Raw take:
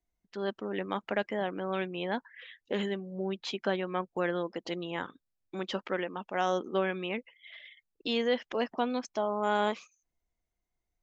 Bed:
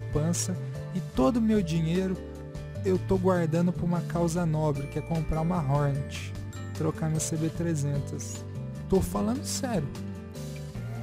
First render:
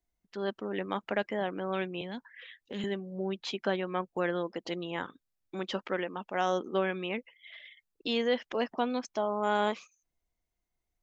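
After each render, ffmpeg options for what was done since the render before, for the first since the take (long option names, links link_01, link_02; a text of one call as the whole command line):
ffmpeg -i in.wav -filter_complex "[0:a]asettb=1/sr,asplit=3[link_01][link_02][link_03];[link_01]atrim=end=2.014[link_04];[link_02]atrim=start=2.01:end=2.84,asetpts=PTS-STARTPTS,afade=type=in:duration=0.004:curve=qsin,afade=type=out:start_time=0.826:duration=0.004:curve=qsin,acrossover=split=240|3000[link_05][link_06][link_07];[link_06]acompressor=threshold=-43dB:ratio=4:attack=3.2:release=140:knee=2.83:detection=peak[link_08];[link_05][link_08][link_07]amix=inputs=3:normalize=0[link_09];[link_03]atrim=start=2.836[link_10];[link_04][link_09]acrossfade=duration=0.004:curve1=hsin:curve2=qsin[link_11];[link_11][link_10]acrossfade=duration=0.004:curve1=qsin:curve2=hsin" out.wav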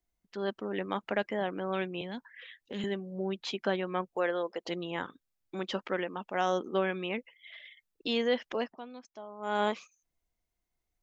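ffmpeg -i in.wav -filter_complex "[0:a]asettb=1/sr,asplit=3[link_01][link_02][link_03];[link_01]atrim=end=4.164[link_04];[link_02]atrim=start=4.16:end=4.68,asetpts=PTS-STARTPTS,afade=type=in:duration=0.004:curve=qsin,afade=type=out:start_time=0.516:duration=0.004:curve=qsin,lowshelf=frequency=330:width_type=q:width=1.5:gain=-9[link_05];[link_03]atrim=start=4.676[link_06];[link_04][link_05]acrossfade=duration=0.004:curve1=hsin:curve2=qsin[link_07];[link_07][link_06]acrossfade=duration=0.004:curve1=qsin:curve2=hsin,asplit=3[link_08][link_09][link_10];[link_08]atrim=end=8.78,asetpts=PTS-STARTPTS,afade=type=out:start_time=8.54:duration=0.24:silence=0.188365[link_11];[link_09]atrim=start=8.78:end=9.38,asetpts=PTS-STARTPTS,volume=-14.5dB[link_12];[link_10]atrim=start=9.38,asetpts=PTS-STARTPTS,afade=type=in:duration=0.24:silence=0.188365[link_13];[link_11][link_12][link_13]concat=n=3:v=0:a=1" out.wav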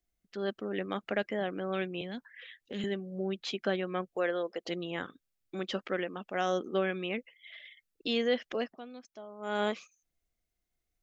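ffmpeg -i in.wav -af "equalizer=frequency=940:width=4.1:gain=-10" out.wav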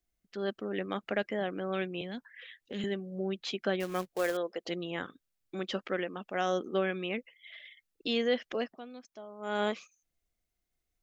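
ffmpeg -i in.wav -filter_complex "[0:a]asettb=1/sr,asplit=3[link_01][link_02][link_03];[link_01]atrim=end=3.804[link_04];[link_02]atrim=start=3.8:end=4.37,asetpts=PTS-STARTPTS,afade=type=in:duration=0.004:curve=qsin,afade=type=out:start_time=0.566:duration=0.004:curve=qsin,acrusher=bits=3:mode=log:mix=0:aa=0.000001[link_05];[link_03]atrim=start=4.366[link_06];[link_04][link_05]acrossfade=duration=0.004:curve1=hsin:curve2=qsin[link_07];[link_07][link_06]acrossfade=duration=0.004:curve1=qsin:curve2=hsin" out.wav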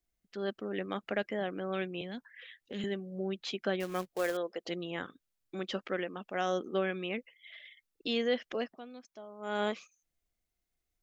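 ffmpeg -i in.wav -af "volume=-1.5dB" out.wav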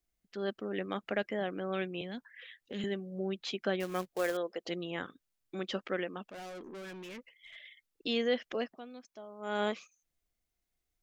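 ffmpeg -i in.wav -filter_complex "[0:a]asettb=1/sr,asplit=3[link_01][link_02][link_03];[link_01]atrim=end=6.264[link_04];[link_02]atrim=start=6.26:end=7.56,asetpts=PTS-STARTPTS,afade=type=in:duration=0.004:curve=qsin,afade=type=out:start_time=1.296:duration=0.004:curve=qsin,aeval=exprs='(tanh(141*val(0)+0.15)-tanh(0.15))/141':channel_layout=same[link_05];[link_03]atrim=start=7.556[link_06];[link_04][link_05]acrossfade=duration=0.004:curve1=hsin:curve2=qsin[link_07];[link_07][link_06]acrossfade=duration=0.004:curve1=qsin:curve2=hsin" out.wav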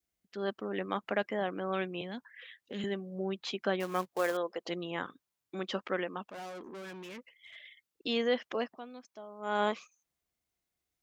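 ffmpeg -i in.wav -af "highpass=73,adynamicequalizer=threshold=0.00224:dfrequency=990:dqfactor=2:tfrequency=990:tqfactor=2:attack=5:release=100:ratio=0.375:range=4:mode=boostabove:tftype=bell" out.wav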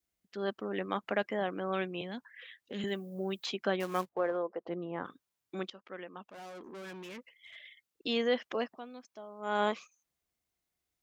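ffmpeg -i in.wav -filter_complex "[0:a]asplit=3[link_01][link_02][link_03];[link_01]afade=type=out:start_time=2.86:duration=0.02[link_04];[link_02]aemphasis=mode=production:type=75fm,afade=type=in:start_time=2.86:duration=0.02,afade=type=out:start_time=3.45:duration=0.02[link_05];[link_03]afade=type=in:start_time=3.45:duration=0.02[link_06];[link_04][link_05][link_06]amix=inputs=3:normalize=0,asettb=1/sr,asplit=3[link_07][link_08][link_09];[link_07]atrim=end=4.094[link_10];[link_08]atrim=start=4.09:end=5.05,asetpts=PTS-STARTPTS,afade=type=in:duration=0.004:curve=qsin,afade=type=out:start_time=0.956:duration=0.004:curve=qsin,lowpass=1200[link_11];[link_09]atrim=start=5.046[link_12];[link_10][link_11]acrossfade=duration=0.004:curve1=hsin:curve2=qsin[link_13];[link_13][link_12]acrossfade=duration=0.004:curve1=qsin:curve2=hsin,asplit=2[link_14][link_15];[link_14]atrim=end=5.7,asetpts=PTS-STARTPTS,afade=type=out:start_time=5.696:duration=0.004:curve=hsin:silence=0.0794328[link_16];[link_15]atrim=start=5.7,asetpts=PTS-STARTPTS,afade=type=in:duration=1.21:silence=0.0794328[link_17];[link_16][link_17]concat=n=2:v=0:a=1" out.wav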